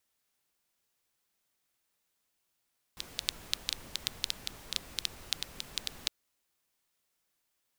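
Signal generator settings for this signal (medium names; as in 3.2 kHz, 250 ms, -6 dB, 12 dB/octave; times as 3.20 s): rain from filtered ticks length 3.11 s, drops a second 6.7, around 3.8 kHz, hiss -10 dB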